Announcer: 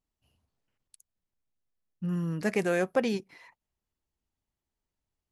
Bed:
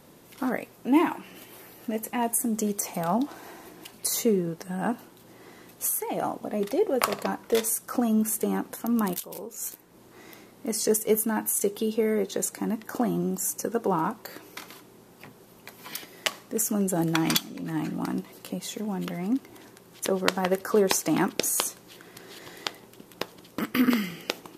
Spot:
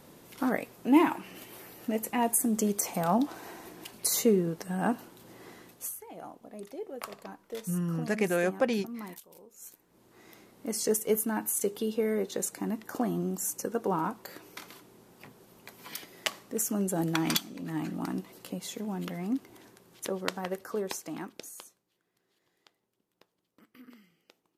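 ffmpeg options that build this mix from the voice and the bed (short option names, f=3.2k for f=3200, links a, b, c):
-filter_complex "[0:a]adelay=5650,volume=-0.5dB[a];[1:a]volume=11dB,afade=t=out:st=5.5:d=0.47:silence=0.177828,afade=t=in:st=9.55:d=1.19:silence=0.266073,afade=t=out:st=19.19:d=2.66:silence=0.0473151[b];[a][b]amix=inputs=2:normalize=0"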